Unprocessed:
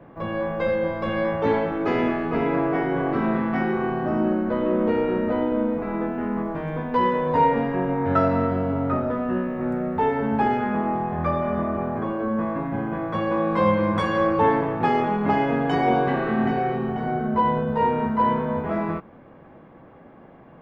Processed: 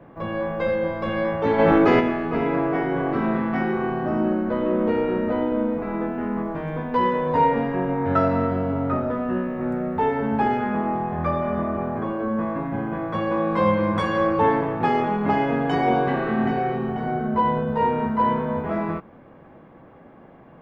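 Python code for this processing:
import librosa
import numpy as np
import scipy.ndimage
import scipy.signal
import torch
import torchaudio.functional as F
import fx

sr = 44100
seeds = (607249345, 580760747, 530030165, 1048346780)

y = fx.env_flatten(x, sr, amount_pct=100, at=(1.58, 1.99), fade=0.02)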